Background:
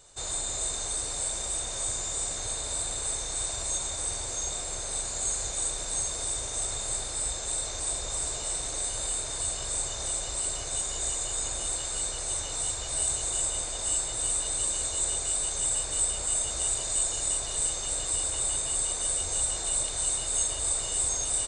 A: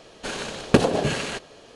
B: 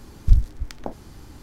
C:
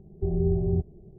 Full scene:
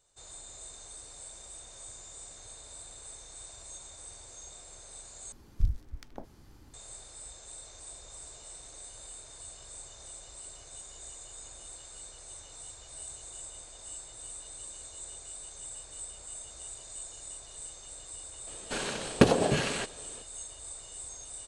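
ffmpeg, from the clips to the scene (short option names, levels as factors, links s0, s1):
-filter_complex "[0:a]volume=0.168,asplit=2[s0][s1];[s0]atrim=end=5.324[s2];[2:a]atrim=end=1.42,asetpts=PTS-STARTPTS,volume=0.251[s3];[s1]atrim=start=6.736[s4];[1:a]atrim=end=1.75,asetpts=PTS-STARTPTS,volume=0.668,afade=t=in:d=0.004:c=hsin,afade=t=out:st=1.746:d=0.004:c=hsin,adelay=18470[s5];[s2][s3]acrossfade=d=0.004:c1=hsin:c2=hsin[s6];[s6][s4]acrossfade=d=0.004:c1=hsin:c2=hsin[s7];[s7][s5]amix=inputs=2:normalize=0"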